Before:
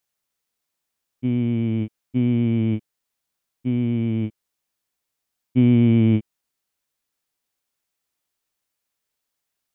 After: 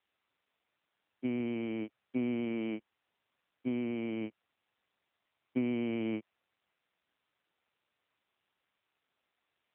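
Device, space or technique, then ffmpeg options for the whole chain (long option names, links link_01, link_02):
voicemail: -af "highpass=440,lowpass=2800,acompressor=threshold=-29dB:ratio=10,volume=1.5dB" -ar 8000 -c:a libopencore_amrnb -b:a 7400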